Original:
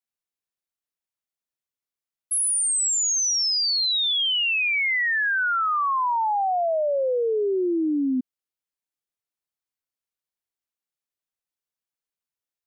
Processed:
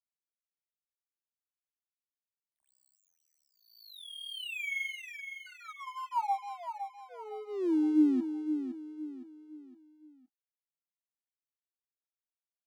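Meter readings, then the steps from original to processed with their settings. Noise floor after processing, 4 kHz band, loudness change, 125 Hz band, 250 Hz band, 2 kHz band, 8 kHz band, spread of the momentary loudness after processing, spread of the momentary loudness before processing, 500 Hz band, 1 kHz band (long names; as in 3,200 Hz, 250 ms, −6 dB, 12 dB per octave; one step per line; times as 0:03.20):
below −85 dBFS, −22.0 dB, −12.5 dB, can't be measured, −2.0 dB, −17.0 dB, below −35 dB, 21 LU, 4 LU, −16.5 dB, −12.5 dB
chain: rotating-speaker cabinet horn 0.65 Hz, later 6.3 Hz, at 0:04.83
flanger 0.17 Hz, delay 9.2 ms, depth 8 ms, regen −41%
formant filter u
tape wow and flutter 110 cents
dead-zone distortion −57 dBFS
on a send: repeating echo 513 ms, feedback 39%, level −8.5 dB
on the sum: level +7.5 dB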